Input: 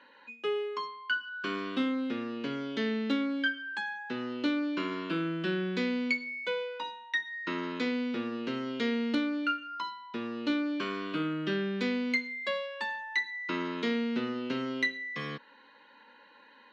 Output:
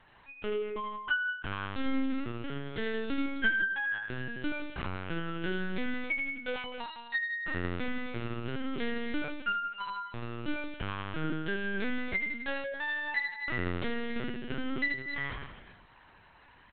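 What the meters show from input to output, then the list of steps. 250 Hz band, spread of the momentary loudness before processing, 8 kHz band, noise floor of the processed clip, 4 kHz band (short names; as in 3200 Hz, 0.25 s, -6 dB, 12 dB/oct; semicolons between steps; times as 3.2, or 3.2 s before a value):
-5.0 dB, 6 LU, n/a, -58 dBFS, -4.0 dB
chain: dynamic EQ 1600 Hz, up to +7 dB, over -53 dBFS, Q 5.7; on a send: reverse bouncing-ball echo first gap 80 ms, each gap 1.1×, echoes 5; on the sum: LPC vocoder at 8 kHz pitch kept; gain -3 dB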